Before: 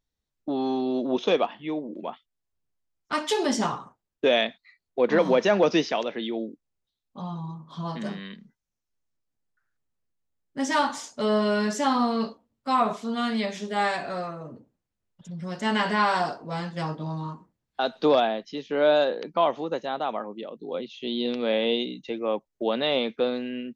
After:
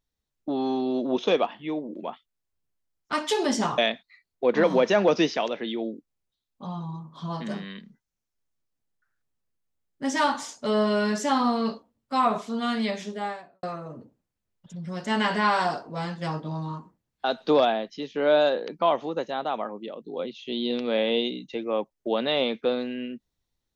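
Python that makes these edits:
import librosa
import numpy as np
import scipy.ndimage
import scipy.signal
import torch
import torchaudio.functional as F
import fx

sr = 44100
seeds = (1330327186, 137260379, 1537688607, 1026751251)

y = fx.studio_fade_out(x, sr, start_s=13.48, length_s=0.7)
y = fx.edit(y, sr, fx.cut(start_s=3.78, length_s=0.55), tone=tone)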